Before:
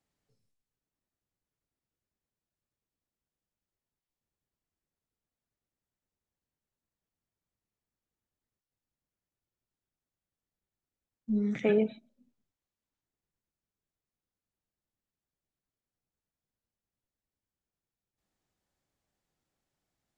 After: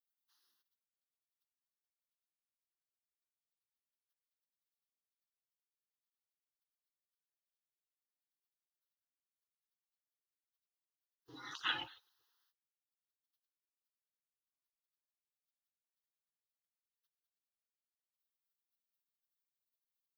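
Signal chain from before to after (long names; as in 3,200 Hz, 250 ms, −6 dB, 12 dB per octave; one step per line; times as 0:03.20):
gate on every frequency bin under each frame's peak −30 dB weak
high-pass filter 850 Hz 6 dB per octave
phaser with its sweep stopped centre 2,300 Hz, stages 6
level +16 dB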